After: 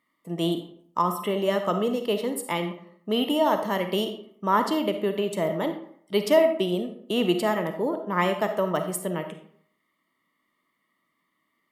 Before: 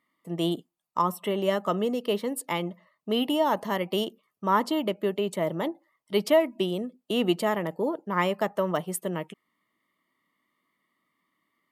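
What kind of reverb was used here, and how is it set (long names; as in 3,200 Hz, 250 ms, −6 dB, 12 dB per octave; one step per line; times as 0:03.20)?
comb and all-pass reverb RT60 0.62 s, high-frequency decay 0.65×, pre-delay 10 ms, DRR 6.5 dB
level +1 dB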